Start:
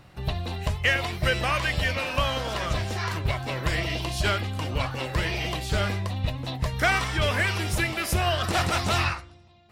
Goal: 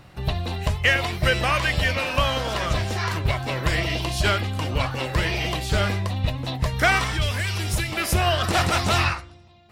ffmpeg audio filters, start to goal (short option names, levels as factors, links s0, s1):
-filter_complex "[0:a]asettb=1/sr,asplit=3[s0][s1][s2];[s0]atrim=end=7.124[s3];[s1]atrim=start=7.12:end=7.92,asetpts=PTS-STARTPTS,afade=t=in:d=0.004:c=qsin,afade=t=out:st=0.796:d=0.004:c=qsin,acrossover=split=150|3000[s4][s5][s6];[s5]acompressor=threshold=0.02:ratio=6[s7];[s4][s7][s6]amix=inputs=3:normalize=0[s8];[s2]atrim=start=7.916[s9];[s3][s8]acrossfade=d=0.004:c1=hsin:c2=qsin[s10];[s10][s9]acrossfade=d=0.004:c1=qsin:c2=hsin,volume=1.5"